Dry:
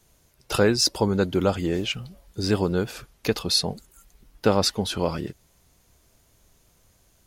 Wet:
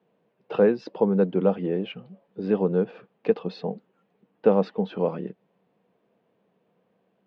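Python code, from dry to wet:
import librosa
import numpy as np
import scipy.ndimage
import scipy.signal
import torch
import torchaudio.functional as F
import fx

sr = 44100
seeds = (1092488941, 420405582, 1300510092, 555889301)

y = fx.cabinet(x, sr, low_hz=170.0, low_slope=24, high_hz=2500.0, hz=(190.0, 470.0, 750.0, 1400.0, 2100.0), db=(9, 10, 3, -5, -6))
y = y * librosa.db_to_amplitude(-4.5)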